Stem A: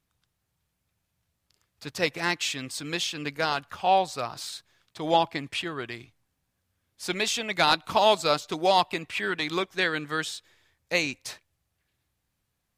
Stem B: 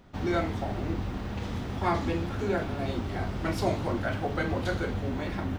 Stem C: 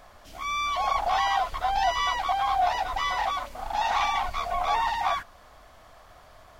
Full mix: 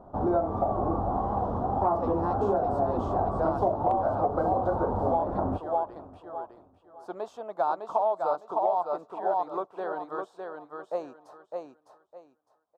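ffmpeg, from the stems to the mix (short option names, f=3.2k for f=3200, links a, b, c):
-filter_complex "[0:a]highpass=f=530:p=1,volume=-8dB,asplit=2[a][b];[b]volume=-4.5dB[c];[1:a]volume=0dB,asplit=2[d][e];[e]volume=-21dB[f];[2:a]flanger=delay=19:depth=6.1:speed=2.8,highpass=f=430:w=0.5412,highpass=f=430:w=1.3066,volume=-14.5dB[g];[c][f]amix=inputs=2:normalize=0,aecho=0:1:607|1214|1821|2428:1|0.24|0.0576|0.0138[h];[a][d][g][h]amix=inputs=4:normalize=0,firequalizer=gain_entry='entry(150,0);entry(670,14);entry(1200,5);entry(2100,-29);entry(3100,-23)':delay=0.05:min_phase=1,asoftclip=type=hard:threshold=-5.5dB,acompressor=threshold=-22dB:ratio=6"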